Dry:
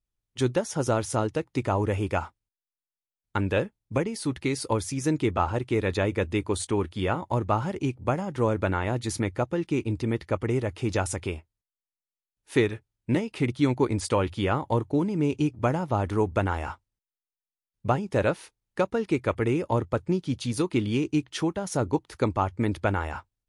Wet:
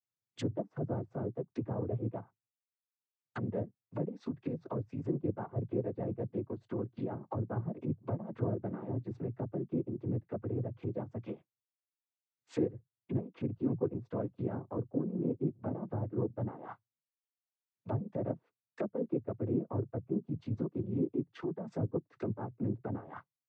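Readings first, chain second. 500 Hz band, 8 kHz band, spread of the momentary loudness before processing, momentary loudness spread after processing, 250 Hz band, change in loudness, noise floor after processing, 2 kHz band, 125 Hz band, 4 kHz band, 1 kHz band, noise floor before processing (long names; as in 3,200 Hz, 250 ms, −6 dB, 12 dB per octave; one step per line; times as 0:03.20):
−10.5 dB, below −30 dB, 5 LU, 6 LU, −8.5 dB, −10.0 dB, below −85 dBFS, −23.0 dB, −8.5 dB, below −20 dB, −17.0 dB, below −85 dBFS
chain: transient designer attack −3 dB, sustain −8 dB
treble cut that deepens with the level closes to 470 Hz, closed at −25.5 dBFS
cochlear-implant simulation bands 16
level −6 dB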